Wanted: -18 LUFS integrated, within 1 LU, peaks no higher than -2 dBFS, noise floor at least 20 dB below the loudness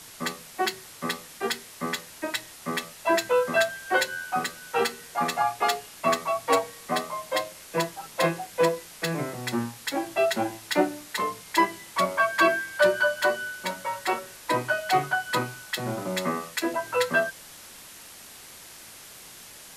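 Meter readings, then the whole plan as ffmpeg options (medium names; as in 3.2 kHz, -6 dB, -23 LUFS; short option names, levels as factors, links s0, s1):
noise floor -46 dBFS; noise floor target -47 dBFS; loudness -27.0 LUFS; peak level -9.0 dBFS; loudness target -18.0 LUFS
-> -af "afftdn=nr=6:nf=-46"
-af "volume=2.82,alimiter=limit=0.794:level=0:latency=1"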